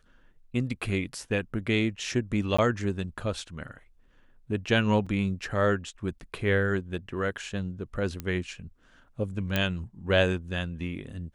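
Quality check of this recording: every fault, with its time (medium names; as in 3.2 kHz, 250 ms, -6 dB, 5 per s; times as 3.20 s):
2.57–2.58 s: dropout 15 ms
5.06–5.07 s: dropout 5.6 ms
8.20 s: pop -19 dBFS
9.56 s: pop -11 dBFS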